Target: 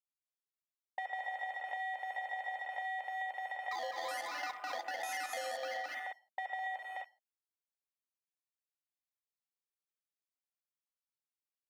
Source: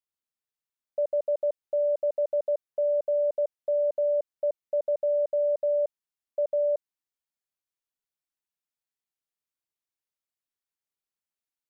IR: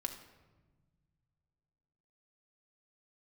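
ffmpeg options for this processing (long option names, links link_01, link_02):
-filter_complex "[0:a]aeval=exprs='0.0447*(abs(mod(val(0)/0.0447+3,4)-2)-1)':channel_layout=same,afreqshift=170,asettb=1/sr,asplit=3[link_01][link_02][link_03];[link_01]atrim=end=3.714[link_04];[link_02]atrim=start=3.71:end=5.74,asetpts=PTS-STARTPTS,afade=type=in:duration=0.004:curve=qsin,afade=type=out:start_time=2.026:duration=0.004:curve=qsin,acrusher=samples=14:mix=1:aa=0.000001:lfo=1:lforange=8.4:lforate=1.3[link_05];[link_03]atrim=start=5.736[link_06];[link_04][link_05]acrossfade=duration=0.004:curve1=hsin:curve2=qsin[link_07];[link_07][link_06]acrossfade=duration=0.004:curve1=qsin:curve2=hsin,alimiter=level_in=4.5dB:limit=-24dB:level=0:latency=1:release=283,volume=-4.5dB,aecho=1:1:207|256.6:0.631|0.447[link_08];[1:a]atrim=start_sample=2205,afade=type=out:start_time=0.22:duration=0.01,atrim=end_sample=10143[link_09];[link_08][link_09]afir=irnorm=-1:irlink=0,afwtdn=0.00355,acompressor=threshold=-41dB:ratio=6,highpass=380,volume=4.5dB"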